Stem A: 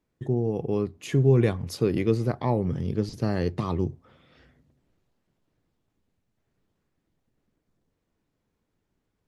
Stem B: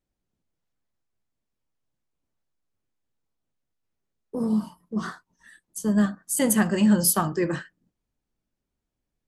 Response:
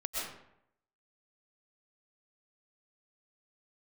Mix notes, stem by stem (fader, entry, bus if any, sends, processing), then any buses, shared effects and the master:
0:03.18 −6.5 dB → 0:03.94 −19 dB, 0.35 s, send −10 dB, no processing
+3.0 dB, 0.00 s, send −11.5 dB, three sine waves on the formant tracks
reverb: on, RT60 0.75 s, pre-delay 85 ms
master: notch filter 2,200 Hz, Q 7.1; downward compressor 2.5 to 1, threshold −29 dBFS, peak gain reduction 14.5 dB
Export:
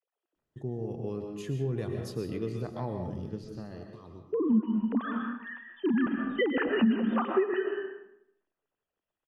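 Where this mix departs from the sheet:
stem A −6.5 dB → −13.5 dB
reverb return +8.0 dB

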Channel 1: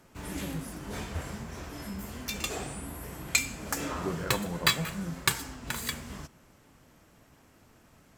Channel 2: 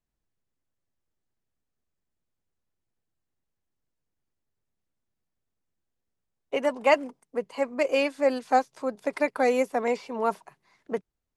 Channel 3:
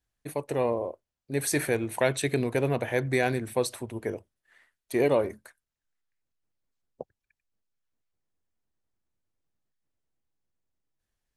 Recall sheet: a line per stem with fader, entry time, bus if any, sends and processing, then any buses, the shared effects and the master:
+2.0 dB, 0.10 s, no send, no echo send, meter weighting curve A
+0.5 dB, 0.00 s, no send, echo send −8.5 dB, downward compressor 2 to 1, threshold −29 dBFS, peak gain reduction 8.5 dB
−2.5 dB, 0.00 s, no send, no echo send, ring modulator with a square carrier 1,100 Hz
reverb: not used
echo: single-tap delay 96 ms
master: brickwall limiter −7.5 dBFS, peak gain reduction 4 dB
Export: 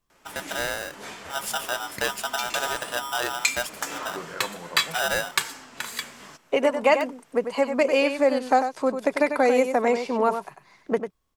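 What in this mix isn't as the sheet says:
stem 2 +0.5 dB → +8.5 dB
master: missing brickwall limiter −7.5 dBFS, peak gain reduction 4 dB

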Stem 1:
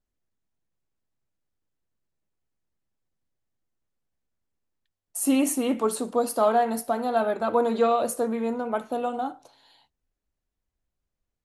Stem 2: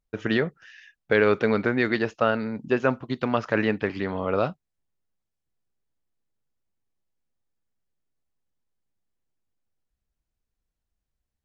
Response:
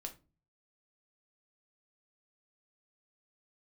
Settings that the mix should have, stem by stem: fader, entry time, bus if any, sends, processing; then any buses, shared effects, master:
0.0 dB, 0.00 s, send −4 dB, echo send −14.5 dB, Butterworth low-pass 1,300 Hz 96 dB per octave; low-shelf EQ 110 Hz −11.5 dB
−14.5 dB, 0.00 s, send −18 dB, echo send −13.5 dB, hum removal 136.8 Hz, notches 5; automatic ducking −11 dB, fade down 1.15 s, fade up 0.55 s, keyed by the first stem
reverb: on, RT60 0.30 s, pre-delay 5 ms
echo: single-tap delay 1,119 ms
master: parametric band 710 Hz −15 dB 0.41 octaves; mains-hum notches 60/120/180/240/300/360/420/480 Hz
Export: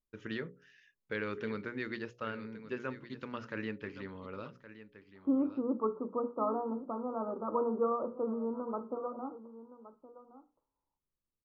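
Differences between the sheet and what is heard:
stem 1 0.0 dB → −6.0 dB
reverb return −6.5 dB

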